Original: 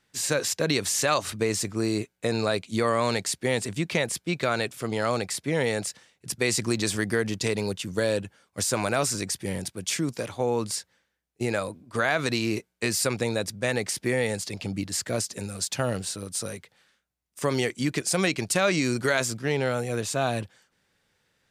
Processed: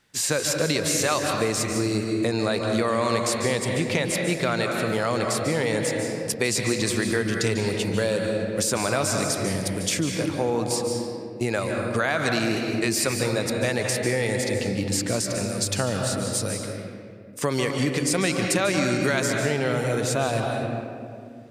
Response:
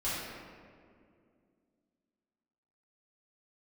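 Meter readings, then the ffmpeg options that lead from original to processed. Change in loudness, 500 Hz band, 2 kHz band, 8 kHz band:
+2.5 dB, +3.0 dB, +2.5 dB, +2.5 dB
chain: -filter_complex "[0:a]asplit=2[link_01][link_02];[1:a]atrim=start_sample=2205,adelay=142[link_03];[link_02][link_03]afir=irnorm=-1:irlink=0,volume=-10dB[link_04];[link_01][link_04]amix=inputs=2:normalize=0,acompressor=threshold=-28dB:ratio=2,volume=5dB"

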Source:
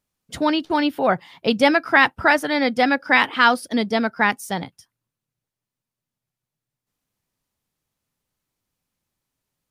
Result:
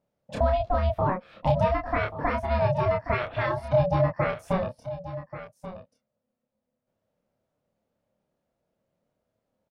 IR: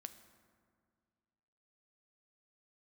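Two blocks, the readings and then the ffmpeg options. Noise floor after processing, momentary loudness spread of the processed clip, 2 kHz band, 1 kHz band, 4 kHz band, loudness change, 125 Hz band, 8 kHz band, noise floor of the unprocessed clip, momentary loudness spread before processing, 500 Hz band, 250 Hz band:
−82 dBFS, 15 LU, −16.0 dB, −7.0 dB, −18.5 dB, −7.5 dB, +12.0 dB, below −15 dB, below −85 dBFS, 9 LU, −2.0 dB, −11.5 dB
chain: -filter_complex "[0:a]lowpass=frequency=1600:poles=1,acompressor=threshold=-28dB:ratio=4,equalizer=frequency=240:width=0.6:gain=11.5,aeval=exprs='val(0)*sin(2*PI*370*n/s)':channel_layout=same,lowshelf=frequency=130:gain=-3.5,asplit=2[link_01][link_02];[link_02]adelay=28,volume=-3dB[link_03];[link_01][link_03]amix=inputs=2:normalize=0,asplit=2[link_04][link_05];[link_05]aecho=0:1:1134:0.224[link_06];[link_04][link_06]amix=inputs=2:normalize=0"

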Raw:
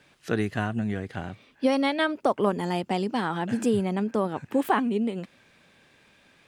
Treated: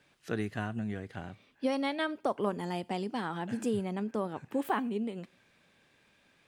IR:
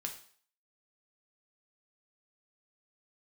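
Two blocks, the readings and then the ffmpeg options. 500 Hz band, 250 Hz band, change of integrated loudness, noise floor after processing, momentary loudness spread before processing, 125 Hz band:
−7.5 dB, −7.5 dB, −7.5 dB, −68 dBFS, 9 LU, −7.5 dB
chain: -filter_complex "[0:a]asplit=2[link_01][link_02];[1:a]atrim=start_sample=2205,highshelf=frequency=8800:gain=10.5[link_03];[link_02][link_03]afir=irnorm=-1:irlink=0,volume=-16dB[link_04];[link_01][link_04]amix=inputs=2:normalize=0,volume=-8.5dB"

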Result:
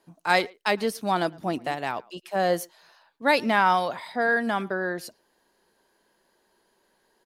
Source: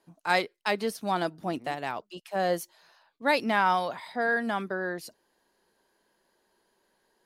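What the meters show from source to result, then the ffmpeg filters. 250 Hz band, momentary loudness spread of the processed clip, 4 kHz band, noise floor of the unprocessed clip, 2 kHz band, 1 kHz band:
+3.5 dB, 11 LU, +3.5 dB, −73 dBFS, +3.5 dB, +3.5 dB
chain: -filter_complex "[0:a]asplit=2[link_01][link_02];[link_02]adelay=110,highpass=300,lowpass=3400,asoftclip=type=hard:threshold=-19dB,volume=-24dB[link_03];[link_01][link_03]amix=inputs=2:normalize=0,volume=3.5dB"

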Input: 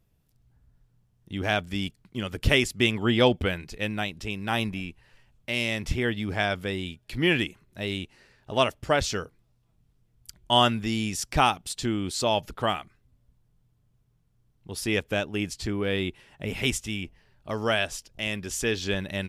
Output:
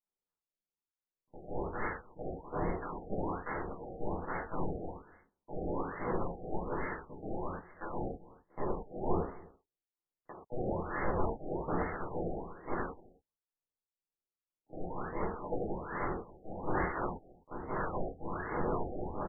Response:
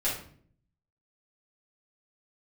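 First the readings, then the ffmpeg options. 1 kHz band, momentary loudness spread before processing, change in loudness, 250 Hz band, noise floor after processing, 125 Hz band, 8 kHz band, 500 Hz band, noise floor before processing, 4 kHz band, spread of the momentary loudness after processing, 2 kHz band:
−8.0 dB, 12 LU, −11.5 dB, −10.5 dB, below −85 dBFS, −11.0 dB, below −40 dB, −8.5 dB, −68 dBFS, below −40 dB, 11 LU, −15.0 dB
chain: -filter_complex "[0:a]lowpass=6300,agate=range=-22dB:threshold=-52dB:ratio=16:detection=peak,highpass=frequency=360:poles=1,afreqshift=-83,areverse,acompressor=threshold=-34dB:ratio=8,areverse,aeval=exprs='(mod(56.2*val(0)+1,2)-1)/56.2':channel_layout=same,aderivative,acrusher=samples=17:mix=1:aa=0.000001:lfo=1:lforange=27.2:lforate=2,asoftclip=type=tanh:threshold=-30.5dB,aecho=1:1:258:0.0841[link_01];[1:a]atrim=start_sample=2205,atrim=end_sample=3969,asetrate=26901,aresample=44100[link_02];[link_01][link_02]afir=irnorm=-1:irlink=0,afftfilt=real='re*lt(b*sr/1024,780*pow(2200/780,0.5+0.5*sin(2*PI*1.2*pts/sr)))':imag='im*lt(b*sr/1024,780*pow(2200/780,0.5+0.5*sin(2*PI*1.2*pts/sr)))':win_size=1024:overlap=0.75"

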